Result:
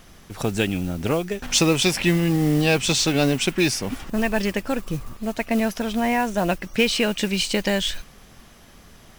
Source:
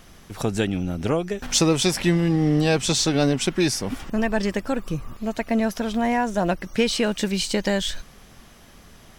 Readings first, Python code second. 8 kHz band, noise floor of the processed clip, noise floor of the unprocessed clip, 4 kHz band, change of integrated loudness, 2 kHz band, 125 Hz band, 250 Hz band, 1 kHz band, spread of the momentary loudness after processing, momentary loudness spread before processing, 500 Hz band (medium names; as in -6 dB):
+0.5 dB, -49 dBFS, -49 dBFS, +2.5 dB, +1.0 dB, +3.5 dB, 0.0 dB, 0.0 dB, 0.0 dB, 9 LU, 8 LU, 0.0 dB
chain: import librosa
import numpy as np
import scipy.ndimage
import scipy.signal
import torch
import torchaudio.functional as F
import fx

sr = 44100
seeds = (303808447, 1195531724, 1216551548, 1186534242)

y = fx.dynamic_eq(x, sr, hz=2600.0, q=2.4, threshold_db=-44.0, ratio=4.0, max_db=7)
y = fx.mod_noise(y, sr, seeds[0], snr_db=21)